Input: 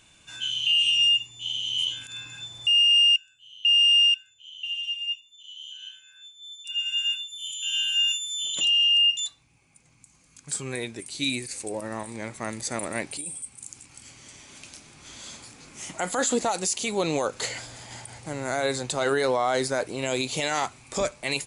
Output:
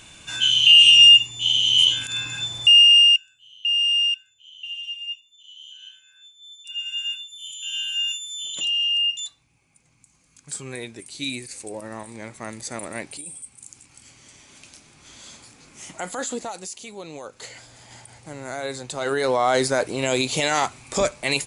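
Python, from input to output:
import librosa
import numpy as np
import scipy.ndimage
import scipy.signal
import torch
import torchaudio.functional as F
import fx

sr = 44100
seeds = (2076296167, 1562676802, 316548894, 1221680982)

y = fx.gain(x, sr, db=fx.line((2.51, 10.5), (3.66, -2.0), (16.0, -2.0), (17.08, -12.5), (17.9, -4.0), (18.86, -4.0), (19.48, 5.0)))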